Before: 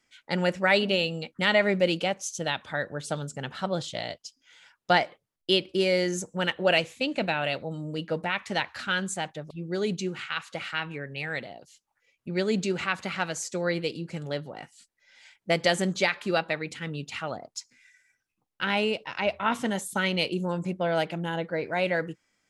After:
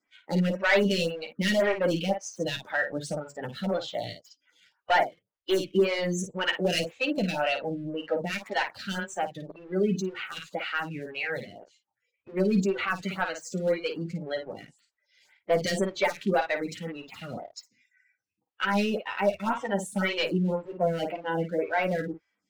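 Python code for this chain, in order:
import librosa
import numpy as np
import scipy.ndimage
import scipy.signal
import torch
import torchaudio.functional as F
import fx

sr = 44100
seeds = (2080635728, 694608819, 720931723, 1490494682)

y = fx.spec_quant(x, sr, step_db=15)
y = scipy.signal.sosfilt(scipy.signal.butter(2, 46.0, 'highpass', fs=sr, output='sos'), y)
y = fx.spec_gate(y, sr, threshold_db=-20, keep='strong')
y = scipy.signal.sosfilt(scipy.signal.butter(2, 7400.0, 'lowpass', fs=sr, output='sos'), y)
y = fx.leveller(y, sr, passes=1)
y = np.clip(y, -10.0 ** (-17.0 / 20.0), 10.0 ** (-17.0 / 20.0))
y = fx.room_early_taps(y, sr, ms=(10, 54), db=(-5.0, -7.5))
y = fx.stagger_phaser(y, sr, hz=1.9)
y = y * 10.0 ** (-1.0 / 20.0)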